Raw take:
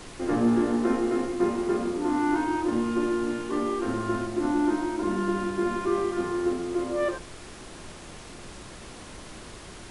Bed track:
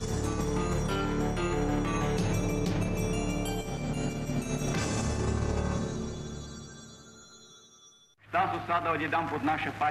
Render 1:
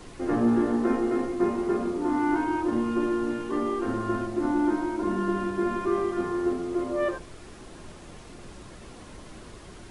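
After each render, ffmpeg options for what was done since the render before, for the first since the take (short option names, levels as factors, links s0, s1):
-af "afftdn=nr=6:nf=-44"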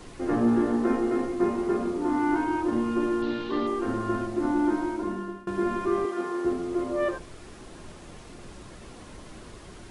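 -filter_complex "[0:a]asettb=1/sr,asplit=3[s0][s1][s2];[s0]atrim=end=3.224[s3];[s1]atrim=start=3.22:end=3.67,asetpts=PTS-STARTPTS,afade=t=in:d=0.004:c=qsin,afade=t=out:st=0.446:d=0.004:c=qsin,lowpass=f=3900:t=q:w=4.3[s4];[s2]atrim=start=3.666[s5];[s3][s4]acrossfade=d=0.004:c1=hsin:c2=qsin[s6];[s6][s5]acrossfade=d=0.004:c1=qsin:c2=hsin,asettb=1/sr,asplit=3[s7][s8][s9];[s7]atrim=end=6.054[s10];[s8]atrim=start=6.05:end=6.45,asetpts=PTS-STARTPTS,afade=t=in:d=0.004:c=qsin,afade=t=out:st=0.396:d=0.004:c=qsin,highpass=310[s11];[s9]atrim=start=6.446[s12];[s10][s11]acrossfade=d=0.004:c1=hsin:c2=qsin[s13];[s13][s12]acrossfade=d=0.004:c1=qsin:c2=hsin,asplit=2[s14][s15];[s14]atrim=end=5.47,asetpts=PTS-STARTPTS,afade=t=out:st=4.88:d=0.59:silence=0.0668344[s16];[s15]atrim=start=5.47,asetpts=PTS-STARTPTS,afade=t=in:d=0.004:c=hsin:silence=0.0668344[s17];[s16][s17]concat=n=2:v=0:a=1"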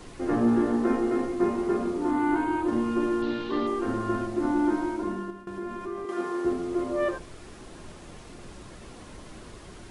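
-filter_complex "[0:a]asettb=1/sr,asplit=3[s0][s1][s2];[s0]atrim=end=2.114[s3];[s1]atrim=start=2.11:end=2.68,asetpts=PTS-STARTPTS,afade=t=in:d=0.004:c=qsin,afade=t=out:st=0.566:d=0.004:c=qsin,equalizer=f=5500:t=o:w=0.33:g=-9.5[s4];[s2]atrim=start=2.676[s5];[s3][s4]acrossfade=d=0.004:c1=hsin:c2=qsin[s6];[s6][s5]acrossfade=d=0.004:c1=qsin:c2=hsin,asettb=1/sr,asplit=3[s7][s8][s9];[s7]atrim=end=5.304[s10];[s8]atrim=start=5.3:end=6.09,asetpts=PTS-STARTPTS,afade=t=in:d=0.004:c=qsin,afade=t=out:st=0.786:d=0.004:c=qsin,acompressor=threshold=0.0126:ratio=2:attack=3.2:release=140:knee=1:detection=peak[s11];[s9]atrim=start=6.086[s12];[s10][s11]acrossfade=d=0.004:c1=hsin:c2=qsin[s13];[s13][s12]acrossfade=d=0.004:c1=qsin:c2=hsin"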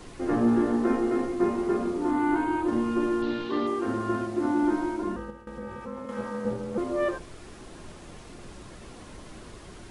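-filter_complex "[0:a]asettb=1/sr,asplit=3[s0][s1][s2];[s0]atrim=end=3.454[s3];[s1]atrim=start=3.45:end=4.63,asetpts=PTS-STARTPTS,afade=t=in:d=0.004:c=qsin,afade=t=out:st=1.176:d=0.004:c=qsin,highpass=75[s4];[s2]atrim=start=4.626[s5];[s3][s4]acrossfade=d=0.004:c1=hsin:c2=qsin[s6];[s6][s5]acrossfade=d=0.004:c1=qsin:c2=hsin,asettb=1/sr,asplit=3[s7][s8][s9];[s7]atrim=end=5.164[s10];[s8]atrim=start=5.16:end=6.78,asetpts=PTS-STARTPTS,afade=t=in:d=0.004:c=qsin,afade=t=out:st=1.616:d=0.004:c=qsin,aeval=exprs='val(0)*sin(2*PI*140*n/s)':c=same[s11];[s9]atrim=start=6.776[s12];[s10][s11]acrossfade=d=0.004:c1=hsin:c2=qsin[s13];[s13][s12]acrossfade=d=0.004:c1=qsin:c2=hsin"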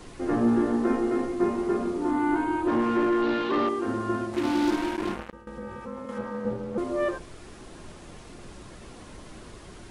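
-filter_complex "[0:a]asettb=1/sr,asplit=3[s0][s1][s2];[s0]atrim=end=2.674[s3];[s1]atrim=start=2.67:end=3.69,asetpts=PTS-STARTPTS,afade=t=in:d=0.004:c=qsin,afade=t=out:st=1.016:d=0.004:c=qsin,asplit=2[s4][s5];[s5]highpass=f=720:p=1,volume=8.91,asoftclip=type=tanh:threshold=0.168[s6];[s4][s6]amix=inputs=2:normalize=0,lowpass=f=1500:p=1,volume=0.501[s7];[s2]atrim=start=3.686[s8];[s3][s7]acrossfade=d=0.004:c1=hsin:c2=qsin[s9];[s9][s8]acrossfade=d=0.004:c1=qsin:c2=hsin,asettb=1/sr,asplit=3[s10][s11][s12];[s10]atrim=end=4.334[s13];[s11]atrim=start=4.33:end=5.33,asetpts=PTS-STARTPTS,afade=t=in:d=0.004:c=qsin,afade=t=out:st=0.996:d=0.004:c=qsin,acrusher=bits=4:mix=0:aa=0.5[s14];[s12]atrim=start=5.326[s15];[s13][s14]acrossfade=d=0.004:c1=hsin:c2=qsin[s16];[s16][s15]acrossfade=d=0.004:c1=qsin:c2=hsin,asettb=1/sr,asplit=3[s17][s18][s19];[s17]atrim=end=6.184[s20];[s18]atrim=start=6.18:end=6.78,asetpts=PTS-STARTPTS,afade=t=in:d=0.004:c=qsin,afade=t=out:st=0.596:d=0.004:c=qsin,highshelf=f=4900:g=-11.5[s21];[s19]atrim=start=6.776[s22];[s20][s21]acrossfade=d=0.004:c1=hsin:c2=qsin[s23];[s23][s22]acrossfade=d=0.004:c1=qsin:c2=hsin"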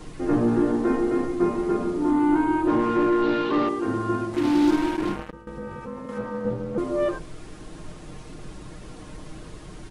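-af "lowshelf=f=310:g=6,aecho=1:1:6.5:0.45"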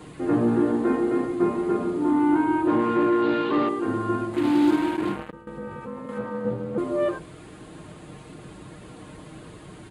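-af "highpass=82,equalizer=f=5600:t=o:w=0.39:g=-12"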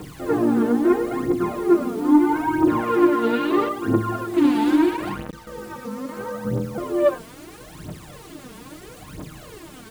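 -af "acrusher=bits=7:mix=0:aa=0.000001,aphaser=in_gain=1:out_gain=1:delay=4.6:decay=0.7:speed=0.76:type=triangular"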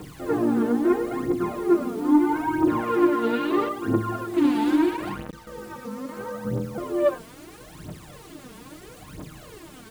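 -af "volume=0.708"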